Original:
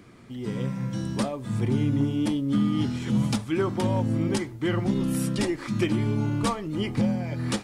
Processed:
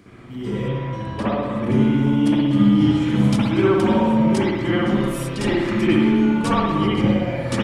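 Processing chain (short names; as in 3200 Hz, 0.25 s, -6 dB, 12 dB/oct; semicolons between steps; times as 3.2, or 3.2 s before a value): 0.68–1.64 tone controls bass -3 dB, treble -12 dB; speakerphone echo 0.24 s, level -9 dB; spring tank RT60 1.2 s, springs 59 ms, chirp 75 ms, DRR -8 dB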